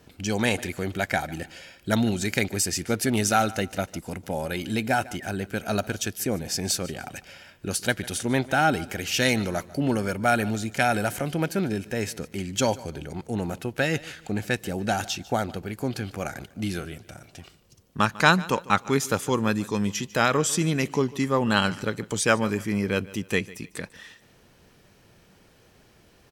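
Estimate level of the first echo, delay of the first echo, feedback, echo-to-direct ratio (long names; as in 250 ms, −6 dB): −20.0 dB, 148 ms, 32%, −19.5 dB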